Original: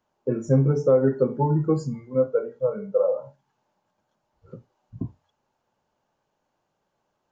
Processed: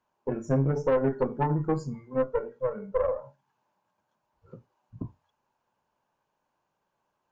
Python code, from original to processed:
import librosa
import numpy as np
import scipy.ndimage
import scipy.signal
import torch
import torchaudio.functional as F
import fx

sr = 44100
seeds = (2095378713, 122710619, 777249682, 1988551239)

y = fx.graphic_eq_31(x, sr, hz=(1000, 1600, 2500), db=(8, 4, 4))
y = fx.tube_stage(y, sr, drive_db=15.0, bias=0.7)
y = y * librosa.db_to_amplitude(-1.5)